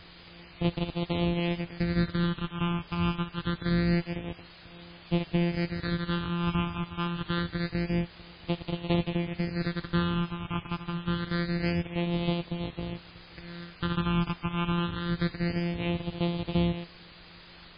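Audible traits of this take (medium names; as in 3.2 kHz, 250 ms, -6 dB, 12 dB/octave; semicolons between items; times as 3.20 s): a buzz of ramps at a fixed pitch in blocks of 256 samples; phasing stages 8, 0.26 Hz, lowest notch 550–1600 Hz; a quantiser's noise floor 8-bit, dither triangular; MP3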